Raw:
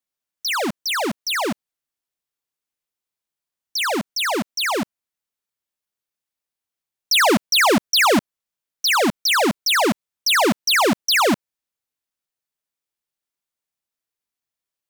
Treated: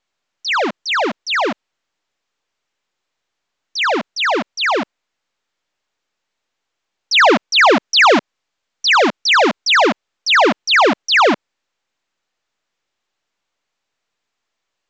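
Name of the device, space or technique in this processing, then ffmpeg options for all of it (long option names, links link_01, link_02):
telephone: -filter_complex "[0:a]asettb=1/sr,asplit=3[link_01][link_02][link_03];[link_01]atrim=end=7.824[link_04];[link_02]atrim=start=7.82:end=9.87,asetpts=PTS-STARTPTS,afade=type=in:duration=0.004:curve=qsin,afade=type=out:start_time=2.046:duration=0.004:curve=qsin,highshelf=frequency=5800:gain=5.5[link_05];[link_03]atrim=start=9.866[link_06];[link_04][link_05]acrossfade=duration=0.004:curve1=hsin:curve2=qsin[link_07];[link_07][link_06]acrossfade=duration=0.004:curve1=qsin:curve2=hsin,highpass=330,lowpass=3500,volume=6.5dB" -ar 16000 -c:a pcm_mulaw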